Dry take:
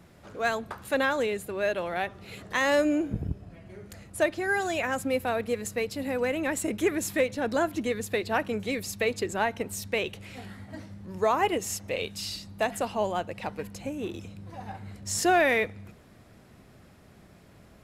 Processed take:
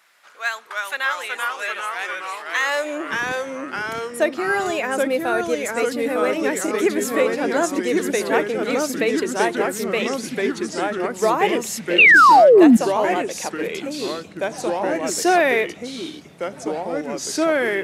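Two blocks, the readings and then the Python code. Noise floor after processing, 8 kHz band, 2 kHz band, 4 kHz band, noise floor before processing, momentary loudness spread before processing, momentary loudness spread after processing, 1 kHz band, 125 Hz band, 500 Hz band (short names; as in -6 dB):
-41 dBFS, +7.0 dB, +11.5 dB, +8.5 dB, -55 dBFS, 18 LU, 14 LU, +11.0 dB, +0.5 dB, +9.0 dB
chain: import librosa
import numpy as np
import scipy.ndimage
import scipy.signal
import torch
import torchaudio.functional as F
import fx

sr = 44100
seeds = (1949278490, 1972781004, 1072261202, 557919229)

y = fx.filter_sweep_highpass(x, sr, from_hz=1400.0, to_hz=310.0, start_s=2.57, end_s=3.24, q=1.1)
y = fx.echo_pitch(y, sr, ms=262, semitones=-2, count=3, db_per_echo=-3.0)
y = fx.spec_paint(y, sr, seeds[0], shape='fall', start_s=11.98, length_s=0.79, low_hz=210.0, high_hz=2900.0, level_db=-14.0)
y = F.gain(torch.from_numpy(y), 4.5).numpy()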